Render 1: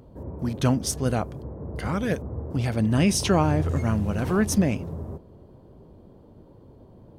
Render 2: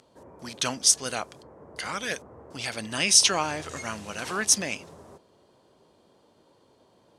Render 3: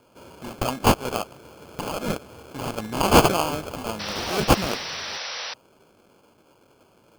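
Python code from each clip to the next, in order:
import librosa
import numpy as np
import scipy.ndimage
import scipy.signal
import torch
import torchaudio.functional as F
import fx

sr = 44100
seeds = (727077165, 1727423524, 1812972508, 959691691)

y1 = fx.weighting(x, sr, curve='ITU-R 468')
y1 = y1 * 10.0 ** (-1.5 / 20.0)
y2 = fx.sample_hold(y1, sr, seeds[0], rate_hz=1900.0, jitter_pct=0)
y2 = fx.spec_paint(y2, sr, seeds[1], shape='noise', start_s=3.99, length_s=1.55, low_hz=450.0, high_hz=6000.0, level_db=-36.0)
y2 = y2 * 10.0 ** (3.5 / 20.0)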